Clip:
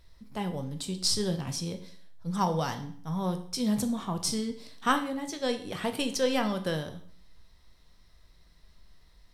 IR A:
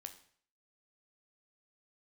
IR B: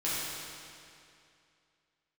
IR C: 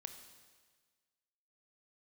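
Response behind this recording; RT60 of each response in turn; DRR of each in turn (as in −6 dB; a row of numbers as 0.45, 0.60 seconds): A; 0.55, 2.5, 1.5 seconds; 6.5, −10.0, 7.0 decibels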